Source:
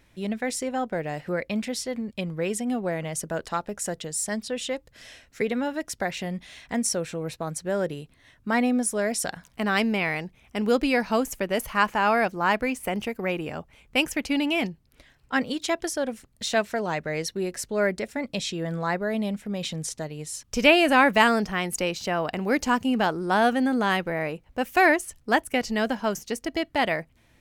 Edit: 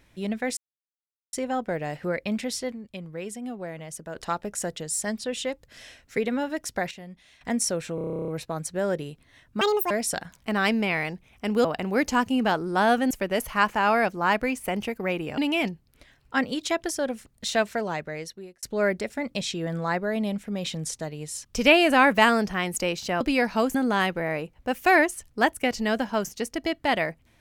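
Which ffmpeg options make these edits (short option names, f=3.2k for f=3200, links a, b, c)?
-filter_complex "[0:a]asplit=25[a][b][c][d][e][f][g][h][i][j][k][l][m][n][o][p][q][r][s][t][u][v][w][x][y];[a]atrim=end=0.57,asetpts=PTS-STARTPTS,afade=t=out:st=0.566:d=0.004:c=hsin,apad=pad_dur=0.76[z];[b]atrim=start=0.57:end=1.962,asetpts=PTS-STARTPTS,afade=t=in:d=0.004:c=hsin[aa];[c]atrim=start=1.958:end=3.402,asetpts=PTS-STARTPTS,volume=-7.5dB[ab];[d]atrim=start=3.398:end=6.152[ac];[e]atrim=start=6.148:end=6.652,asetpts=PTS-STARTPTS,volume=-11dB[ad];[f]atrim=start=6.648:end=7.222[ae];[g]atrim=start=7.188:end=7.222[af];[h]atrim=start=7.188:end=7.222[ag];[i]atrim=start=7.188:end=7.222[ah];[j]atrim=start=7.188:end=7.222[ai];[k]atrim=start=7.188:end=7.222[aj];[l]atrim=start=7.188:end=7.222[ak];[m]atrim=start=7.188:end=7.222[al];[n]atrim=start=7.188:end=7.222[am];[o]atrim=start=7.188:end=7.222[an];[p]atrim=start=7.188:end=7.222[ao];[q]atrim=start=7.188:end=8.524[ap];[r]atrim=start=8.52:end=9.02,asetpts=PTS-STARTPTS,asetrate=74529,aresample=44100,atrim=end_sample=13047,asetpts=PTS-STARTPTS[aq];[s]atrim=start=9.016:end=10.762[ar];[t]atrim=start=22.188:end=23.652[as];[u]atrim=start=11.298:end=13.572[at];[v]atrim=start=14.358:end=17.61,asetpts=PTS-STARTPTS,afade=t=out:st=2.372:d=0.88[au];[w]atrim=start=17.61:end=22.192,asetpts=PTS-STARTPTS,afade=t=in:d=0.004:c=hsin[av];[x]atrim=start=10.758:end=11.302[aw];[y]atrim=start=23.648[ax];[z][aa]concat=n=2:v=0:a=1[ay];[ay][ab]acrossfade=d=0.004:c1=hsin:c2=hsin[az];[az][ac]acrossfade=d=0.004:c1=hsin:c2=hsin[ba];[ba][ad]acrossfade=d=0.004:c1=hsin:c2=hsin[bb];[bb][ae]acrossfade=d=0.004:c1=hsin:c2=hsin[bc];[bc][af]acrossfade=d=0.004:c1=hsin:c2=hsin[bd];[bd][ag]acrossfade=d=0.004:c1=hsin:c2=hsin[be];[be][ah]acrossfade=d=0.004:c1=hsin:c2=hsin[bf];[bf][ai]acrossfade=d=0.004:c1=hsin:c2=hsin[bg];[bg][aj]acrossfade=d=0.004:c1=hsin:c2=hsin[bh];[bh][ak]acrossfade=d=0.004:c1=hsin:c2=hsin[bi];[bi][al]acrossfade=d=0.004:c1=hsin:c2=hsin[bj];[bj][am]acrossfade=d=0.004:c1=hsin:c2=hsin[bk];[bk][an]acrossfade=d=0.004:c1=hsin:c2=hsin[bl];[bl][ao]acrossfade=d=0.004:c1=hsin:c2=hsin[bm];[bm][ap]acrossfade=d=0.004:c1=hsin:c2=hsin[bn];[bn][aq]acrossfade=d=0.004:c1=hsin:c2=hsin[bo];[bo][ar]acrossfade=d=0.004:c1=hsin:c2=hsin[bp];[bp][as]acrossfade=d=0.004:c1=hsin:c2=hsin[bq];[bq][at]acrossfade=d=0.004:c1=hsin:c2=hsin[br];[au][av]concat=n=2:v=0:a=1[bs];[br][bs]acrossfade=d=0.004:c1=hsin:c2=hsin[bt];[bt][aw]acrossfade=d=0.004:c1=hsin:c2=hsin[bu];[bu][ax]acrossfade=d=0.004:c1=hsin:c2=hsin"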